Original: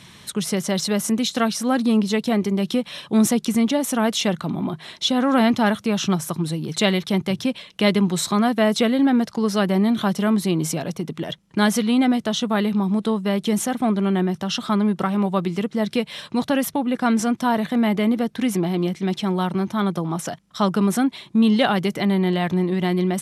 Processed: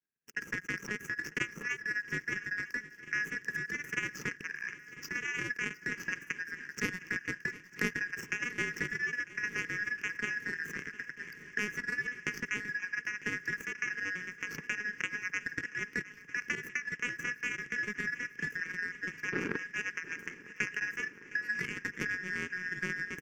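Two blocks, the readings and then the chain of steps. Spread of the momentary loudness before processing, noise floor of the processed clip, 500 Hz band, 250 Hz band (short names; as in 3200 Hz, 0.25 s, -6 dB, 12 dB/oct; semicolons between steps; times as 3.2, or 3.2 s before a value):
7 LU, -54 dBFS, -24.5 dB, -27.5 dB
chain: four-band scrambler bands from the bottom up 4123; in parallel at +2 dB: limiter -13.5 dBFS, peak gain reduction 11 dB; on the sum: bands offset in time highs, lows 50 ms, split 1400 Hz; painted sound noise, 19.32–19.57, 220–1700 Hz -18 dBFS; compressor 4:1, threshold -17 dBFS, peak gain reduction 7.5 dB; power-law curve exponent 3; EQ curve 100 Hz 0 dB, 150 Hz +13 dB, 440 Hz +8 dB, 670 Hz -17 dB, 1700 Hz +2 dB, 2700 Hz -3 dB, 3900 Hz -28 dB, 6000 Hz -5 dB, 9300 Hz -23 dB, 13000 Hz -11 dB; on a send: swung echo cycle 0.949 s, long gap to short 3:1, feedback 72%, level -18.5 dB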